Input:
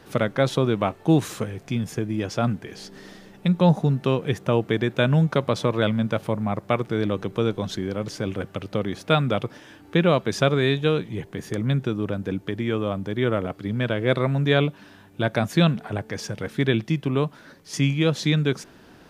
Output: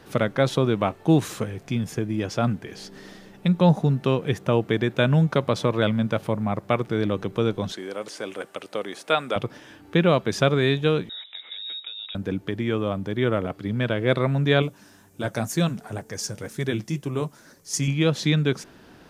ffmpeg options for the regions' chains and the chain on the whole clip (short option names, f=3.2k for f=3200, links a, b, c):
-filter_complex "[0:a]asettb=1/sr,asplit=3[a][b][c];[a]atrim=end=7.724[d];[b]atrim=start=7.72:end=9.36,asetpts=PTS-STARTPTS,afade=t=in:d=0.004:c=qsin,afade=t=out:st=1.636:d=0.004:c=qsin,highpass=420,acrossover=split=4300[e][f];[f]acompressor=threshold=-44dB:ratio=4:attack=1:release=60[g];[e][g]amix=inputs=2:normalize=0,equalizer=f=8.8k:w=1.5:g=8.5[h];[c]atrim=start=9.356[i];[d][h]acrossfade=d=0.004:c1=hsin:c2=qsin[j];[j][i]acrossfade=d=0.004:c1=qsin:c2=hsin,asettb=1/sr,asplit=3[k][l][m];[k]atrim=end=11.094[n];[l]atrim=start=11.09:end=12.15,asetpts=PTS-STARTPTS,afade=t=in:d=0.004:c=qsin,afade=t=out:st=1.056:d=0.004:c=qsin,acompressor=threshold=-34dB:ratio=4:attack=3.2:release=140:knee=1:detection=peak,lowpass=f=3.3k:t=q:w=0.5098,lowpass=f=3.3k:t=q:w=0.6013,lowpass=f=3.3k:t=q:w=0.9,lowpass=f=3.3k:t=q:w=2.563,afreqshift=-3900,highpass=f=200:w=0.5412,highpass=f=200:w=1.3066[o];[m]atrim=start=12.146[p];[n][o]acrossfade=d=0.004:c1=hsin:c2=qsin[q];[q][p]acrossfade=d=0.004:c1=qsin:c2=hsin,asettb=1/sr,asplit=3[r][s][t];[r]atrim=end=14.624[u];[s]atrim=start=14.62:end=17.88,asetpts=PTS-STARTPTS,afade=t=in:d=0.004:c=qsin,afade=t=out:st=3.256:d=0.004:c=qsin,highshelf=f=4.8k:t=q:w=1.5:g=10.5,flanger=delay=1.7:depth=7.6:regen=-54:speed=2:shape=sinusoidal[v];[t]atrim=start=17.876[w];[u][v]acrossfade=d=0.004:c1=hsin:c2=qsin[x];[x][w]acrossfade=d=0.004:c1=qsin:c2=hsin"